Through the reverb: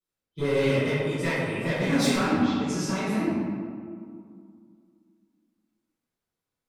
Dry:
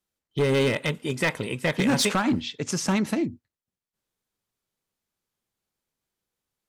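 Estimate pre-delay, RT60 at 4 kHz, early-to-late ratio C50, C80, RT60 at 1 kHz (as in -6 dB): 3 ms, 1.0 s, -3.5 dB, -1.0 dB, 2.2 s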